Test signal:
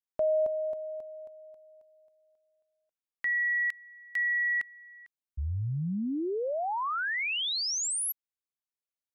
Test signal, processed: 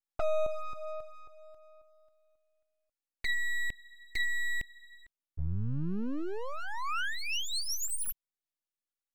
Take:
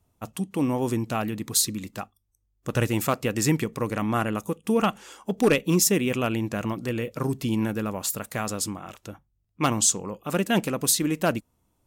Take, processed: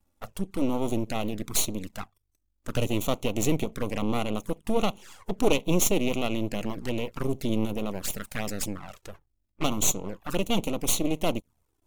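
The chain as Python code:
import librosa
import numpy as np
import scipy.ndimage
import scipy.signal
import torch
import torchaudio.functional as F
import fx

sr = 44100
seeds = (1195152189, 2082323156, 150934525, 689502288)

y = np.maximum(x, 0.0)
y = fx.env_flanger(y, sr, rest_ms=3.6, full_db=-26.5)
y = F.gain(torch.from_numpy(y), 3.5).numpy()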